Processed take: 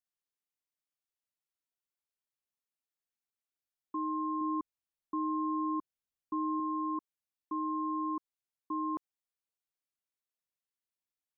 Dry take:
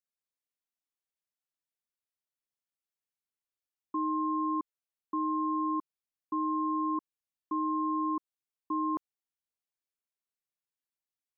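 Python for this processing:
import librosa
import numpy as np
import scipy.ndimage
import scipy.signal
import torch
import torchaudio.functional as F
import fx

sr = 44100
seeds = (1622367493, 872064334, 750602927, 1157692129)

y = fx.low_shelf(x, sr, hz=170.0, db=9.0, at=(4.41, 6.6))
y = F.gain(torch.from_numpy(y), -3.5).numpy()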